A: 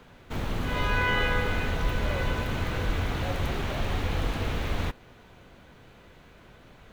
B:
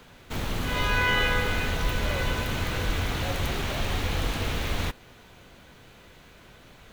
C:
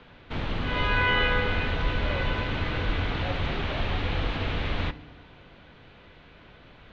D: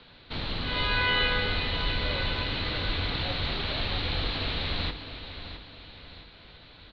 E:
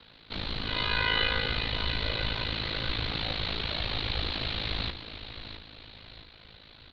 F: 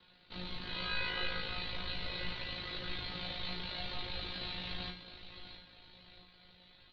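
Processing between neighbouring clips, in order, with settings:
treble shelf 2.9 kHz +9 dB
low-pass 3.8 kHz 24 dB/octave; FDN reverb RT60 1 s, low-frequency decay 1.6×, high-frequency decay 0.85×, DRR 15 dB
resonant low-pass 4.2 kHz, resonance Q 7.3; feedback delay 661 ms, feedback 43%, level -11 dB; trim -4 dB
treble shelf 4.5 kHz +6.5 dB; ring modulator 27 Hz
feedback comb 180 Hz, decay 0.31 s, harmonics all, mix 90%; trim +2 dB

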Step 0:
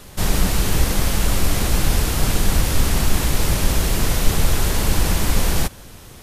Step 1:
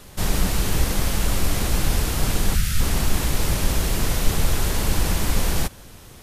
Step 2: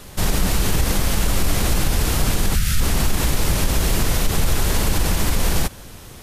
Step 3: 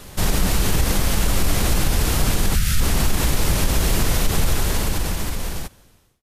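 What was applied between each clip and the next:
time-frequency box 2.55–2.80 s, 220–1200 Hz -17 dB; trim -3 dB
peak limiter -13 dBFS, peak gain reduction 8 dB; trim +4.5 dB
fade out at the end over 1.84 s

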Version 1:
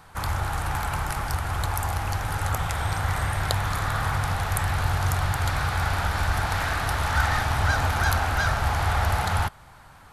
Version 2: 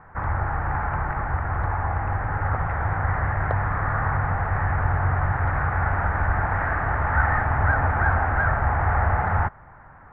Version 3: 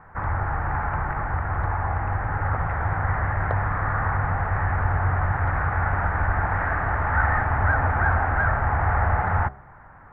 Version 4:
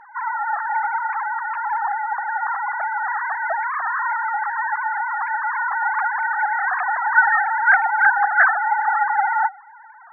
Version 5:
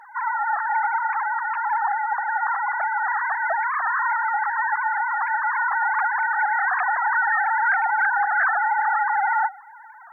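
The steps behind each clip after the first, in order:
elliptic low-pass 1.9 kHz, stop band 80 dB; trim +3 dB
de-hum 67.49 Hz, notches 12
formants replaced by sine waves; trim +2 dB
tone controls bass -14 dB, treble +14 dB; peak limiter -13.5 dBFS, peak gain reduction 11.5 dB

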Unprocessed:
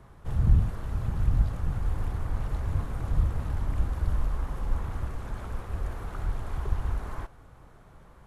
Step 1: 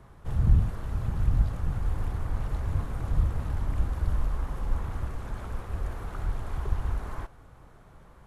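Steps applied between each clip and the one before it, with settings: no audible change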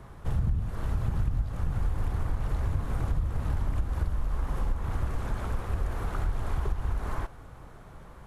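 compression 10:1, threshold -28 dBFS, peak gain reduction 14.5 dB; trim +5 dB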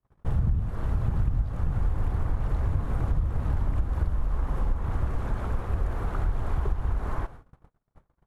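gate -42 dBFS, range -42 dB; treble shelf 2.5 kHz -9 dB; trim +2.5 dB

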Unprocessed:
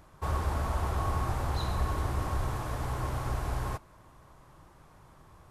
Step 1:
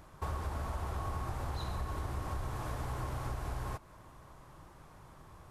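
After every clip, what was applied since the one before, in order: compression 4:1, threshold -36 dBFS, peak gain reduction 10 dB; trim +1 dB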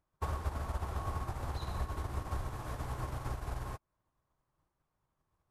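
upward expansion 2.5:1, over -55 dBFS; trim +4 dB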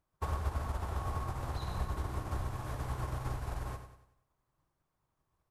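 feedback delay 95 ms, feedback 43%, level -9 dB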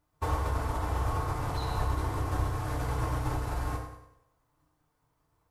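FDN reverb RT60 0.68 s, low-frequency decay 0.7×, high-frequency decay 0.65×, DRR -2.5 dB; trim +3 dB

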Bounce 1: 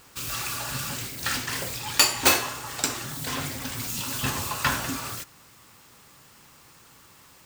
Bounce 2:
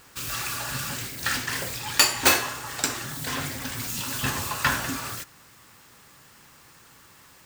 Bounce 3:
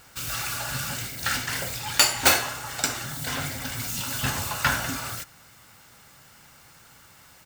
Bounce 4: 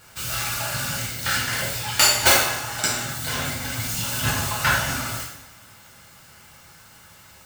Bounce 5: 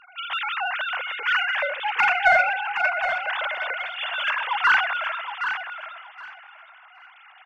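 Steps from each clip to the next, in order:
peaking EQ 1.7 kHz +4 dB 0.45 oct
comb 1.4 ms, depth 34%
two-slope reverb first 0.62 s, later 1.8 s, from -17 dB, DRR -3.5 dB; trim -1.5 dB
formants replaced by sine waves; in parallel at -4 dB: saturation -15 dBFS, distortion -12 dB; on the sum: feedback delay 768 ms, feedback 20%, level -8.5 dB; trim -4 dB

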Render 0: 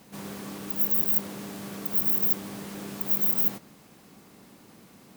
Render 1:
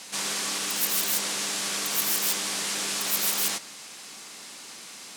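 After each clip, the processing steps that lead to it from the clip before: frequency weighting ITU-R 468; trim +8 dB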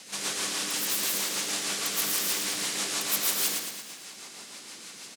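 rotary cabinet horn 6.3 Hz; on a send: feedback delay 113 ms, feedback 53%, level -5.5 dB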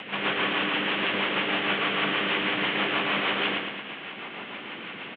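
steep low-pass 3.2 kHz 72 dB/octave; in parallel at -2 dB: upward compressor, threshold -39 dBFS; on the sum: trim +5 dB

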